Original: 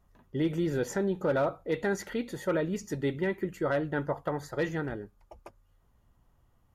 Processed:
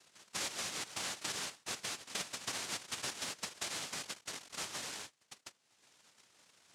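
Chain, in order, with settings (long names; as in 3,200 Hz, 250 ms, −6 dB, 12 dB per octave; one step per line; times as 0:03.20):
0:04.01–0:04.54: sub-harmonics by changed cycles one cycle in 3, muted
downward compressor 5 to 1, threshold −36 dBFS, peak gain reduction 11.5 dB
dynamic equaliser 240 Hz, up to +4 dB, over −50 dBFS, Q 2.1
upward compression, threshold −46 dBFS
cochlear-implant simulation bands 1
level −4 dB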